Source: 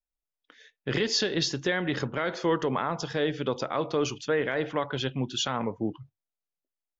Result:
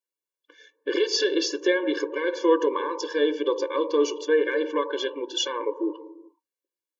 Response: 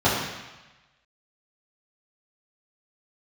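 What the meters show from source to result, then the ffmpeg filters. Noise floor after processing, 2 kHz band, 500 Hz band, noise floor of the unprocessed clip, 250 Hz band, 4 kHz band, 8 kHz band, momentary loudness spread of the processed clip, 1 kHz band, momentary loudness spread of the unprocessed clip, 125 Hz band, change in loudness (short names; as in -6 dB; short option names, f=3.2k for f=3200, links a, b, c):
under -85 dBFS, +1.5 dB, +6.0 dB, under -85 dBFS, +3.0 dB, +1.5 dB, n/a, 7 LU, +1.0 dB, 6 LU, under -35 dB, +3.5 dB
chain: -filter_complex "[0:a]asplit=2[a][b];[b]lowpass=f=800:t=q:w=4.9[c];[1:a]atrim=start_sample=2205,afade=t=out:st=0.32:d=0.01,atrim=end_sample=14553,asetrate=28224,aresample=44100[d];[c][d]afir=irnorm=-1:irlink=0,volume=-34.5dB[e];[a][e]amix=inputs=2:normalize=0,afftfilt=real='re*eq(mod(floor(b*sr/1024/300),2),1)':imag='im*eq(mod(floor(b*sr/1024/300),2),1)':win_size=1024:overlap=0.75,volume=4.5dB"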